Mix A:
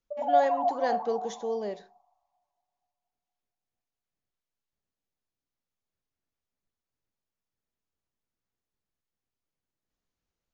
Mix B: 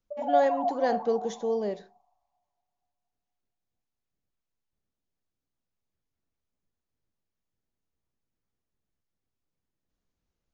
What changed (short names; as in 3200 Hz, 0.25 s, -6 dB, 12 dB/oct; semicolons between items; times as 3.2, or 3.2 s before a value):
background -3.5 dB; master: add low shelf 440 Hz +6.5 dB